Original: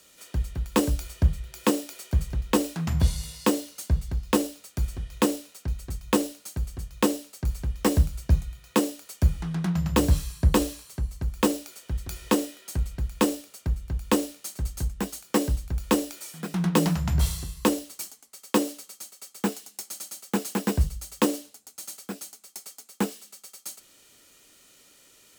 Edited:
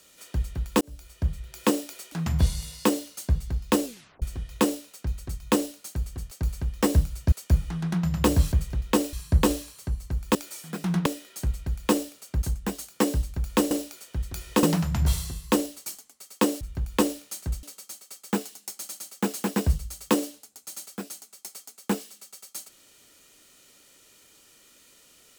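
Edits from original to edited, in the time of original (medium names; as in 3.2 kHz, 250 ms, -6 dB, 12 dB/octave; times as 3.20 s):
0.81–1.61 s: fade in
2.12–2.73 s: move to 10.24 s
4.45 s: tape stop 0.38 s
6.92–7.33 s: delete
8.34–9.04 s: delete
11.46–12.38 s: swap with 16.05–16.76 s
13.74–14.76 s: move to 18.74 s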